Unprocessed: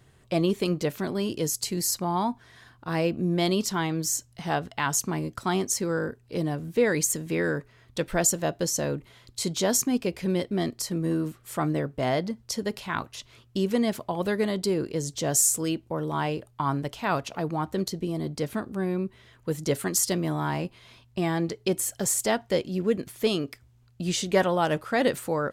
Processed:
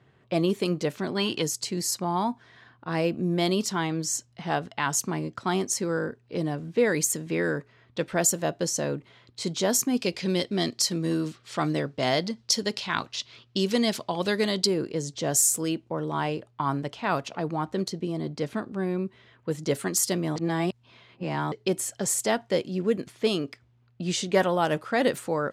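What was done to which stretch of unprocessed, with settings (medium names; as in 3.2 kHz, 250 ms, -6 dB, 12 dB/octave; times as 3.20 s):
1.17–1.42 s: time-frequency box 700–4600 Hz +10 dB
9.97–14.67 s: peaking EQ 4.6 kHz +11 dB 1.7 oct
20.36–21.52 s: reverse
whole clip: high-pass 120 Hz 12 dB/octave; level-controlled noise filter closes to 2.9 kHz, open at -20.5 dBFS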